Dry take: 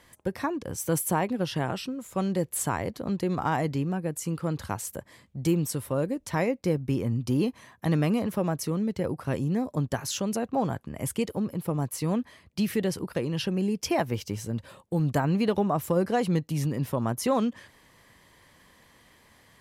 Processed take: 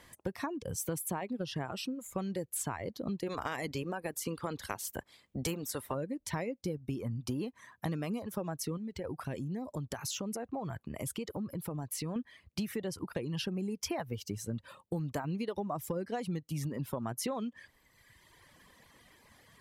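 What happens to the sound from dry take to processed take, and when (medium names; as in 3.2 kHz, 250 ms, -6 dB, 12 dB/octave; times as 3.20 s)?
3.26–5.94 s: spectral peaks clipped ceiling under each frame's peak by 15 dB
8.77–12.16 s: compression 4:1, threshold -32 dBFS
whole clip: reverb removal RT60 1.3 s; compression, threshold -33 dBFS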